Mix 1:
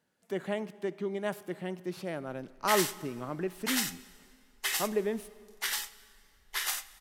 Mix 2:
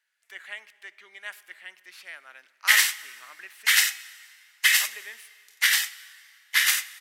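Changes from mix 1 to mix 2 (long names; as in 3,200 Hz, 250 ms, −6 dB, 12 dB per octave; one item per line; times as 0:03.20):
background +9.0 dB
master: add high-pass with resonance 1,900 Hz, resonance Q 2.1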